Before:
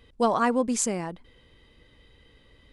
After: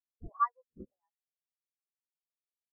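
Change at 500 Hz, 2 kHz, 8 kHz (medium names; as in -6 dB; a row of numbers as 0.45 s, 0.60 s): -32.5 dB, -18.5 dB, under -40 dB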